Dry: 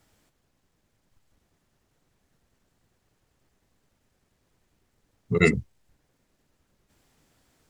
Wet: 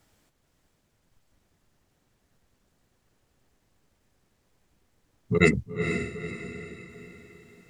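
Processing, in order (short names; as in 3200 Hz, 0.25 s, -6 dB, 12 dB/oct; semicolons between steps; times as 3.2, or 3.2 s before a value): diffused feedback echo 0.473 s, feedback 45%, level -7 dB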